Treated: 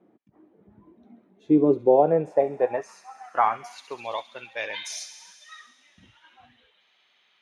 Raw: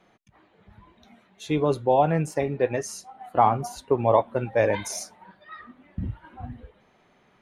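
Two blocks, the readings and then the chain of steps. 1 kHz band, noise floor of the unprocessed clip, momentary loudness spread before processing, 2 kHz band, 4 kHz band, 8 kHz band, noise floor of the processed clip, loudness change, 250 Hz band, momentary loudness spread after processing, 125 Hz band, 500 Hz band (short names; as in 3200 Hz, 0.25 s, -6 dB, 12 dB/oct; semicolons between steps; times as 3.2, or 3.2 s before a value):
-2.5 dB, -62 dBFS, 20 LU, -1.0 dB, +2.0 dB, -4.5 dB, -66 dBFS, +0.5 dB, +3.5 dB, 18 LU, -9.0 dB, +0.5 dB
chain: thin delay 67 ms, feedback 79%, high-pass 2900 Hz, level -11 dB; band-pass sweep 300 Hz -> 3400 Hz, 1.64–4.18; gain +8.5 dB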